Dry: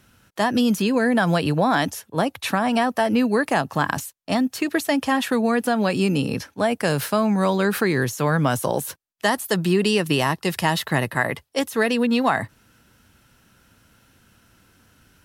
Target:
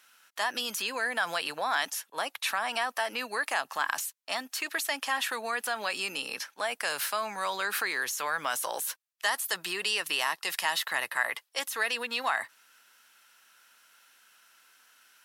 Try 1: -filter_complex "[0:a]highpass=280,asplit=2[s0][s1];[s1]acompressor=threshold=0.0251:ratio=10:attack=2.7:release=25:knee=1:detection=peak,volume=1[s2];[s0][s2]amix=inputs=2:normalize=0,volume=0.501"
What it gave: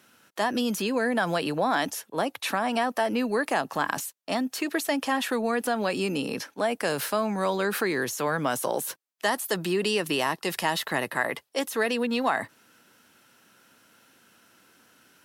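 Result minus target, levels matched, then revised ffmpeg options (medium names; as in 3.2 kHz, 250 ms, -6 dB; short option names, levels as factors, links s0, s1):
250 Hz band +15.5 dB
-filter_complex "[0:a]highpass=1100,asplit=2[s0][s1];[s1]acompressor=threshold=0.0251:ratio=10:attack=2.7:release=25:knee=1:detection=peak,volume=1[s2];[s0][s2]amix=inputs=2:normalize=0,volume=0.501"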